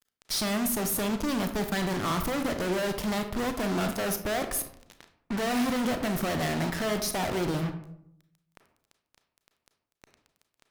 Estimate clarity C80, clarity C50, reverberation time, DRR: 13.0 dB, 9.5 dB, 0.70 s, 7.0 dB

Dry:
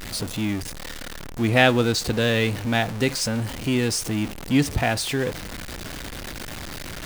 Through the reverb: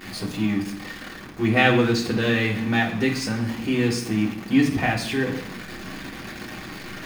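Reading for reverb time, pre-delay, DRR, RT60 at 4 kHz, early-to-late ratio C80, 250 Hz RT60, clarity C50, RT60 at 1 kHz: 0.70 s, 3 ms, -2.5 dB, 0.95 s, 11.5 dB, 0.90 s, 9.0 dB, 0.70 s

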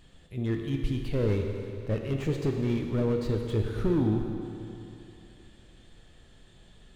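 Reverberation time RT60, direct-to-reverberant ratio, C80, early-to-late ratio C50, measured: 2.8 s, 2.5 dB, 4.5 dB, 3.5 dB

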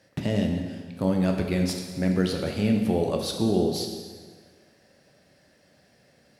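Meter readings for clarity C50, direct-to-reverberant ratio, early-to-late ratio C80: 4.5 dB, 2.0 dB, 5.5 dB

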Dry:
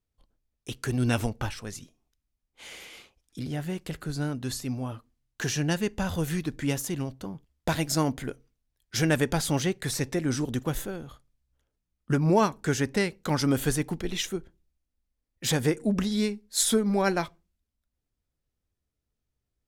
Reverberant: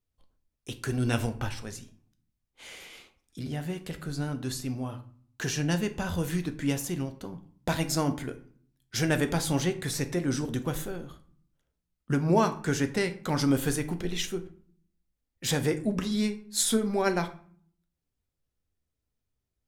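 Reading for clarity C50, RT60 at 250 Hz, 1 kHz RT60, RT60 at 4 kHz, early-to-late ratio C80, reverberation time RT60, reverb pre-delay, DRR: 14.5 dB, 0.85 s, 0.50 s, 0.35 s, 18.0 dB, 0.50 s, 8 ms, 8.0 dB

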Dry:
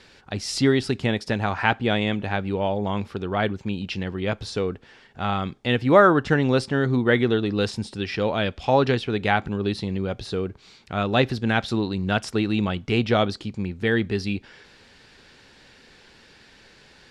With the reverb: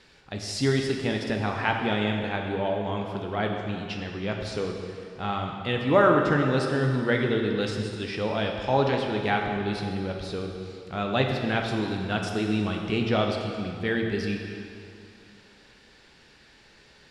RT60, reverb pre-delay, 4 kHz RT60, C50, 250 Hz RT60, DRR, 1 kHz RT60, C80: 2.4 s, 6 ms, 2.1 s, 3.0 dB, 2.4 s, 1.5 dB, 2.4 s, 4.0 dB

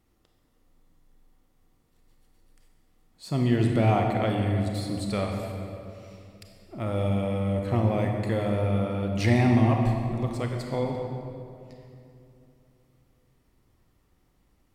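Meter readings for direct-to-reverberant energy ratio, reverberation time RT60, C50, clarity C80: 2.0 dB, 2.7 s, 2.5 dB, 3.5 dB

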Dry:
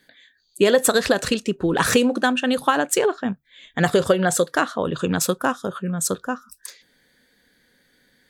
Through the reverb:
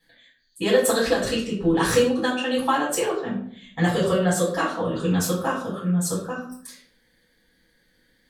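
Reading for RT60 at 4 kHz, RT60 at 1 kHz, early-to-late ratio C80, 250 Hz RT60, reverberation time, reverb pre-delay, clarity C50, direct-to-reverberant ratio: 0.40 s, 0.50 s, 9.0 dB, 0.85 s, 0.55 s, 4 ms, 5.0 dB, -8.0 dB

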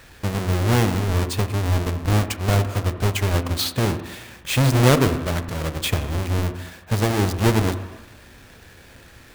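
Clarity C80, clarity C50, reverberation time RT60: 12.0 dB, 11.0 dB, 1.1 s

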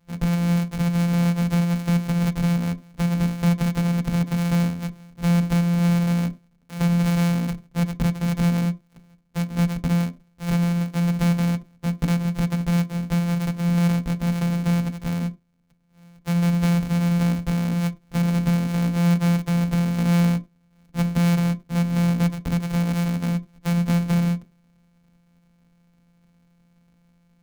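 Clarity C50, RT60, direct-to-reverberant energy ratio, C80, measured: 21.0 dB, not exponential, 8.0 dB, 26.0 dB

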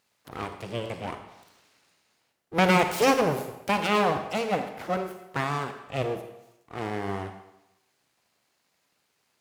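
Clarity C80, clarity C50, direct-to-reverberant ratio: 10.5 dB, 8.5 dB, 7.5 dB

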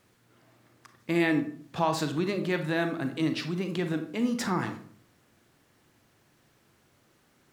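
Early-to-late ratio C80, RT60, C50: 13.5 dB, 0.55 s, 9.5 dB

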